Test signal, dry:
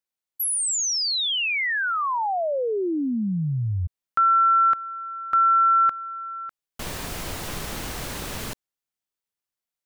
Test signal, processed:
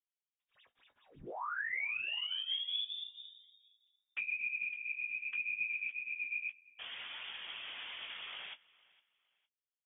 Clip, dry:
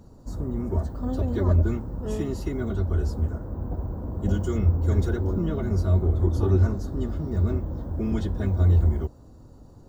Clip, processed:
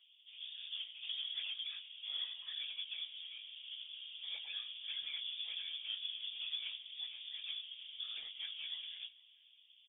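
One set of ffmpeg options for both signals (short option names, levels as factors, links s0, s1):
-filter_complex "[0:a]highpass=f=440:w=0.5412,highpass=f=440:w=1.3066,acompressor=threshold=0.0282:ratio=16:attack=2.7:release=151:knee=6:detection=peak,flanger=delay=9:depth=6.9:regen=-11:speed=0.44:shape=triangular,adynamicsmooth=sensitivity=7.5:basefreq=1500,afftfilt=real='hypot(re,im)*cos(2*PI*random(0))':imag='hypot(re,im)*sin(2*PI*random(1))':win_size=512:overlap=0.75,asoftclip=type=tanh:threshold=0.02,asplit=2[s0][s1];[s1]adelay=18,volume=0.398[s2];[s0][s2]amix=inputs=2:normalize=0,asplit=2[s3][s4];[s4]aecho=0:1:460|920:0.0708|0.0198[s5];[s3][s5]amix=inputs=2:normalize=0,lowpass=f=3200:t=q:w=0.5098,lowpass=f=3200:t=q:w=0.6013,lowpass=f=3200:t=q:w=0.9,lowpass=f=3200:t=q:w=2.563,afreqshift=-3800,volume=1.78"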